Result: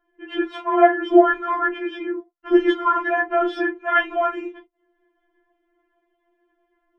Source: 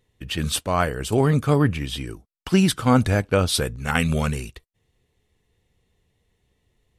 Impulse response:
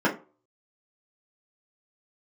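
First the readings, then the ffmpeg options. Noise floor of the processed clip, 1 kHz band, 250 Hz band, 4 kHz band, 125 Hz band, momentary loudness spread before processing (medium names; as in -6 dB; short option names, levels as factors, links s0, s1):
-72 dBFS, +7.0 dB, +0.5 dB, -8.5 dB, under -40 dB, 13 LU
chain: -filter_complex "[0:a]lowpass=2000[s0];[1:a]atrim=start_sample=2205,atrim=end_sample=3528[s1];[s0][s1]afir=irnorm=-1:irlink=0,afftfilt=real='re*4*eq(mod(b,16),0)':imag='im*4*eq(mod(b,16),0)':win_size=2048:overlap=0.75,volume=0.562"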